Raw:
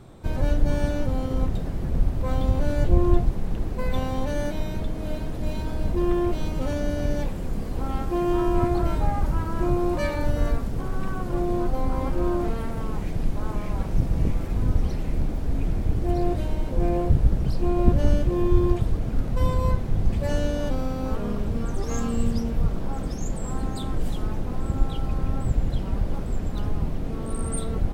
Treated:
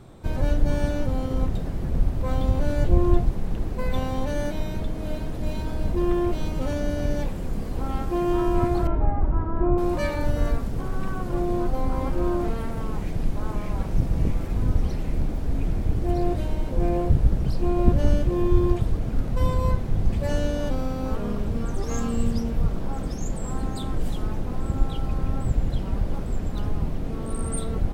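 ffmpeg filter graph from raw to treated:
-filter_complex "[0:a]asettb=1/sr,asplit=3[a][b][c];[a]atrim=end=8.874[d];[b]atrim=start=8.87:end=9.78,asetpts=PTS-STARTPTS,afade=t=in:d=0.004:c=qsin,afade=t=out:st=0.906:d=0.004:c=qsin,lowpass=1.3k,aecho=1:1:2.9:0.32,atrim=end_sample=40131[e];[c]atrim=start=9.776[f];[d][e]acrossfade=d=0.004:c1=hsin:c2=qsin[g];[g][f]acrossfade=d=0.004:c1=qsin:c2=hsin"

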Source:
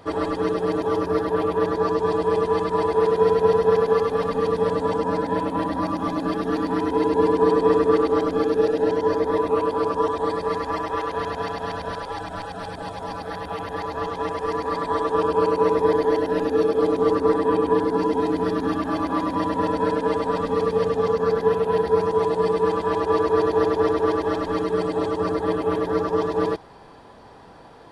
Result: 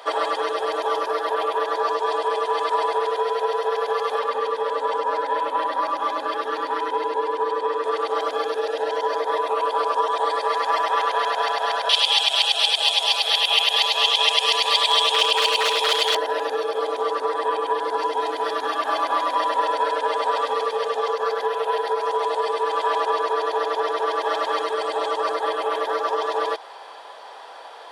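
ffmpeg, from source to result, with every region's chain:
-filter_complex "[0:a]asettb=1/sr,asplit=3[a][b][c];[a]atrim=end=4.194[d];[b]atrim=start=4.19:end=7.84,asetpts=PTS-STARTPTS,afade=t=in:d=0.004:c=qsin,afade=t=out:st=3.646:d=0.004:c=qsin,highshelf=f=2.9k:g=-8,bandreject=f=700:w=5.2[e];[c]atrim=start=7.836[f];[d][e]acrossfade=d=0.004:c1=hsin:c2=qsin[g];[g][f]acrossfade=d=0.004:c1=qsin:c2=hsin,asettb=1/sr,asplit=3[h][i][j];[h]atrim=end=11.894[k];[i]atrim=start=11.89:end=16.15,asetpts=PTS-STARTPTS,afade=t=in:d=0.004:c=qsin,afade=t=out:st=4.256:d=0.004:c=qsin,highshelf=f=2.1k:t=q:w=3:g=11,aeval=exprs='0.178*(abs(mod(val(0)/0.178+3,4)-2)-1)':c=same,highpass=f=530:p=1[l];[j]atrim=start=16.146[m];[k][l]acrossfade=d=0.004:c1=hsin:c2=qsin[n];[n][m]acrossfade=d=0.004:c1=qsin:c2=hsin,acompressor=threshold=-22dB:ratio=6,highpass=f=550:w=0.5412,highpass=f=550:w=1.3066,equalizer=f=3.3k:w=3.3:g=6,volume=8dB"

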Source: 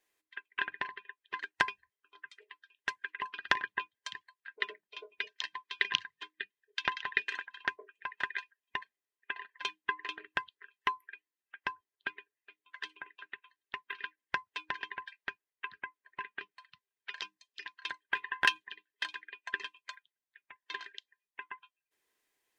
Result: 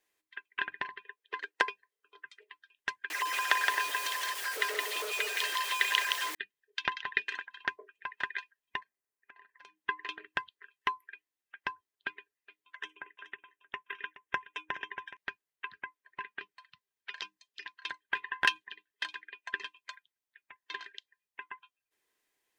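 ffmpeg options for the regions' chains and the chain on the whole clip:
-filter_complex "[0:a]asettb=1/sr,asplit=3[a][b][c];[a]atrim=end=1.034[d];[b]atrim=start=1.03:end=2.25,asetpts=PTS-STARTPTS,afade=t=in:d=0.004:c=qsin,afade=t=out:st=1.216:d=0.004:c=qsin,highpass=290,equalizer=f=460:t=o:w=0.4:g=13.5[e];[c]atrim=start=2.246[f];[d][e]acrossfade=d=0.004:c1=hsin:c2=qsin[g];[g][f]acrossfade=d=0.004:c1=qsin:c2=hsin,asettb=1/sr,asplit=3[h][i][j];[h]atrim=end=3.104[k];[i]atrim=start=3.1:end=6.35,asetpts=PTS-STARTPTS,afade=t=in:d=0.004:c=qsin,afade=t=out:st=3.246:d=0.004:c=qsin,aeval=exprs='val(0)+0.5*0.0282*sgn(val(0))':c=same,highpass=f=430:w=0.5412,highpass=f=430:w=1.3066,aecho=1:1:168:0.708,atrim=end_sample=143325[l];[j]atrim=start=6.346[m];[k][l]acrossfade=d=0.004:c1=hsin:c2=qsin[n];[n][m]acrossfade=d=0.004:c1=qsin:c2=hsin,asettb=1/sr,asplit=3[o][p][q];[o]atrim=end=8.804[r];[p]atrim=start=8.8:end=9.81,asetpts=PTS-STARTPTS,afade=t=in:d=0.004:c=qsin,afade=t=out:st=1.006:d=0.004:c=qsin,equalizer=f=3.4k:w=1.6:g=-9,acompressor=threshold=-54dB:ratio=4:attack=3.2:release=140:knee=1:detection=peak[s];[q]atrim=start=9.806[t];[r][s]acrossfade=d=0.004:c1=hsin:c2=qsin[u];[u][t]acrossfade=d=0.004:c1=qsin:c2=hsin,asettb=1/sr,asplit=3[v][w][x];[v]atrim=end=12.754[y];[w]atrim=start=12.75:end=15.17,asetpts=PTS-STARTPTS,afade=t=in:d=0.004:c=qsin,afade=t=out:st=2.416:d=0.004:c=qsin,asuperstop=centerf=4400:order=4:qfactor=2.2,equalizer=f=440:w=1.9:g=4,aecho=1:1:422:0.178,atrim=end_sample=106722[z];[x]atrim=start=15.166[aa];[y][z]acrossfade=d=0.004:c1=hsin:c2=qsin[ab];[ab][aa]acrossfade=d=0.004:c1=qsin:c2=hsin"

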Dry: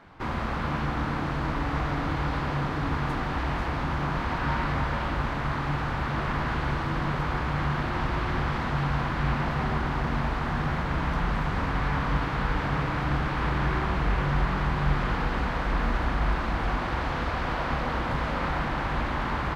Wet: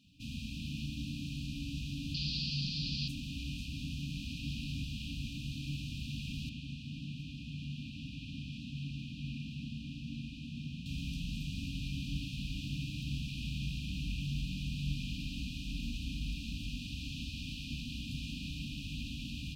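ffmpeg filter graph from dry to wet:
-filter_complex "[0:a]asettb=1/sr,asplit=3[a][b][c];[a]atrim=end=2.144[d];[b]atrim=start=2.14:end=3.08,asetpts=PTS-STARTPTS,afade=t=in:d=0.004:c=qsin,afade=t=out:st=0.936:d=0.004:c=qsin,lowpass=f=4.7k:t=q:w=6.1,aecho=1:1:5.5:0.59,atrim=end_sample=41454[e];[c]atrim=start=3.076[f];[d][e]acrossfade=d=0.004:c1=hsin:c2=qsin[g];[g][f]acrossfade=d=0.004:c1=qsin:c2=hsin,asettb=1/sr,asplit=3[h][i][j];[h]atrim=end=6.494[k];[i]atrim=start=6.49:end=10.86,asetpts=PTS-STARTPTS,afade=t=in:d=0.004:c=qsin,afade=t=out:st=4.366:d=0.004:c=qsin,highpass=f=150:p=1,aemphasis=mode=reproduction:type=75kf[l];[j]atrim=start=10.856[m];[k][l]acrossfade=d=0.004:c1=hsin:c2=qsin[n];[n][m]acrossfade=d=0.004:c1=qsin:c2=hsin,afftfilt=real='re*(1-between(b*sr/4096,300,2400))':imag='im*(1-between(b*sr/4096,300,2400))':win_size=4096:overlap=0.75,highpass=f=68:p=1,highshelf=f=2.9k:g=10.5,volume=-8dB"

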